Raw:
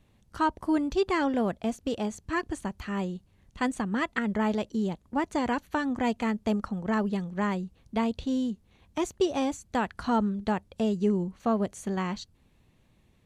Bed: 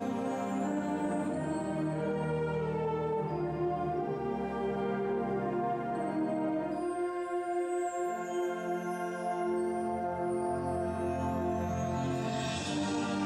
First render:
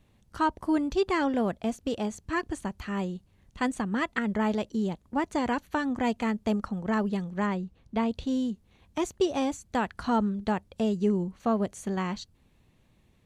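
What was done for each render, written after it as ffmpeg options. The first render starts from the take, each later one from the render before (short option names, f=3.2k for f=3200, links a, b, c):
-filter_complex "[0:a]asettb=1/sr,asplit=3[a][b][c];[a]atrim=end=7.464[d];[b]atrim=start=7.46:end=8.11,asetpts=PTS-STARTPTS,afade=t=in:d=0.004:c=qsin,afade=t=out:st=0.646:d=0.004:c=qsin,lowpass=f=3.8k:p=1[e];[c]atrim=start=8.106[f];[d][e]acrossfade=d=0.004:c1=hsin:c2=qsin[g];[g][f]acrossfade=d=0.004:c1=qsin:c2=hsin"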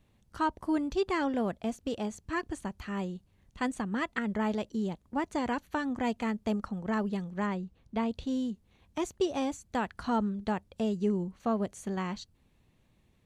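-af "volume=-3.5dB"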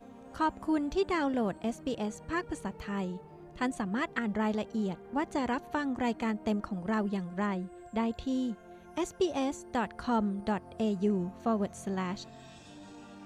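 -filter_complex "[1:a]volume=-17dB[a];[0:a][a]amix=inputs=2:normalize=0"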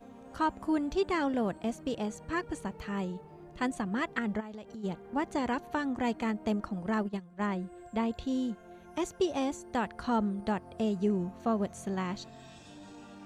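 -filter_complex "[0:a]asplit=3[a][b][c];[a]afade=t=out:st=4.39:d=0.02[d];[b]acompressor=threshold=-41dB:ratio=5:attack=3.2:release=140:knee=1:detection=peak,afade=t=in:st=4.39:d=0.02,afade=t=out:st=4.83:d=0.02[e];[c]afade=t=in:st=4.83:d=0.02[f];[d][e][f]amix=inputs=3:normalize=0,asplit=3[g][h][i];[g]afade=t=out:st=6.93:d=0.02[j];[h]agate=range=-13dB:threshold=-32dB:ratio=16:release=100:detection=peak,afade=t=in:st=6.93:d=0.02,afade=t=out:st=7.41:d=0.02[k];[i]afade=t=in:st=7.41:d=0.02[l];[j][k][l]amix=inputs=3:normalize=0"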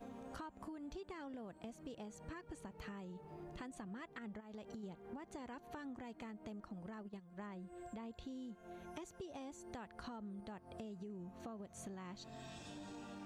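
-af "alimiter=level_in=5dB:limit=-24dB:level=0:latency=1:release=208,volume=-5dB,acompressor=threshold=-47dB:ratio=6"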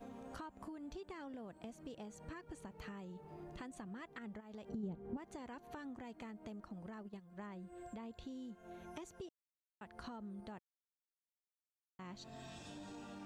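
-filter_complex "[0:a]asettb=1/sr,asplit=3[a][b][c];[a]atrim=end=4.694[d];[b]atrim=start=4.69:end=5.17,asetpts=PTS-STARTPTS,afade=t=in:d=0.004:c=qsin,afade=t=out:st=0.476:d=0.004:c=qsin,tiltshelf=f=680:g=9[e];[c]atrim=start=5.166[f];[d][e]acrossfade=d=0.004:c1=hsin:c2=qsin[g];[g][f]acrossfade=d=0.004:c1=qsin:c2=hsin,asplit=5[h][i][j][k][l];[h]atrim=end=9.29,asetpts=PTS-STARTPTS,afade=t=out:st=9.286:d=0.004:c=hsin[m];[i]atrim=start=9.29:end=9.81,asetpts=PTS-STARTPTS,volume=0[n];[j]atrim=start=9.81:end=10.59,asetpts=PTS-STARTPTS,afade=t=in:d=0.004:c=hsin,afade=t=out:st=0.776:d=0.004:c=hsin[o];[k]atrim=start=10.59:end=11.99,asetpts=PTS-STARTPTS,volume=0[p];[l]atrim=start=11.99,asetpts=PTS-STARTPTS,afade=t=in:d=0.004:c=hsin[q];[m][n][o][p][q]concat=n=5:v=0:a=1"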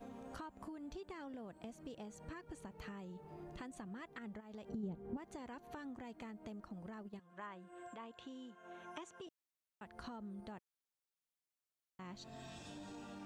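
-filter_complex "[0:a]asettb=1/sr,asplit=3[a][b][c];[a]atrim=end=7.194[d];[b]atrim=start=7.19:end=9.27,asetpts=PTS-STARTPTS,afade=t=in:d=0.004:c=qsin,afade=t=out:st=2.076:d=0.004:c=qsin,highpass=200,equalizer=f=210:t=q:w=4:g=-7,equalizer=f=390:t=q:w=4:g=-3,equalizer=f=1.1k:t=q:w=4:g=8,equalizer=f=1.6k:t=q:w=4:g=6,equalizer=f=3k:t=q:w=4:g=6,equalizer=f=4.6k:t=q:w=4:g=-7,lowpass=f=9k:w=0.5412,lowpass=f=9k:w=1.3066[e];[c]atrim=start=9.266[f];[d][e]acrossfade=d=0.004:c1=hsin:c2=qsin[g];[g][f]acrossfade=d=0.004:c1=qsin:c2=hsin"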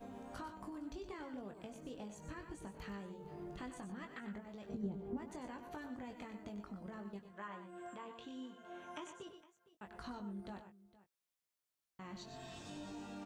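-filter_complex "[0:a]asplit=2[a][b];[b]adelay=20,volume=-6dB[c];[a][c]amix=inputs=2:normalize=0,aecho=1:1:97|119|461:0.282|0.299|0.112"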